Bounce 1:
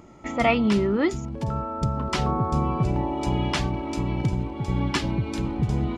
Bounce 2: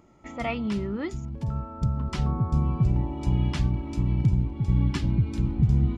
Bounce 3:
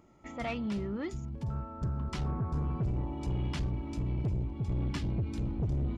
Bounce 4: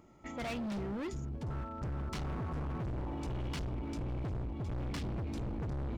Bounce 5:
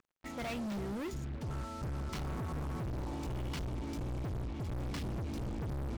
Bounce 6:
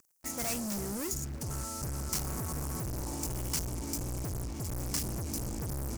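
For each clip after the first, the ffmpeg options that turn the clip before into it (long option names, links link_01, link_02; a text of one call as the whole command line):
ffmpeg -i in.wav -af "asubboost=boost=6:cutoff=220,volume=-9dB" out.wav
ffmpeg -i in.wav -af "asoftclip=type=tanh:threshold=-23dB,volume=-4dB" out.wav
ffmpeg -i in.wav -af "asoftclip=type=hard:threshold=-36.5dB,volume=1dB" out.wav
ffmpeg -i in.wav -af "acrusher=bits=7:mix=0:aa=0.5" out.wav
ffmpeg -i in.wav -af "aexciter=amount=8.8:drive=5.5:freq=5200,volume=1dB" out.wav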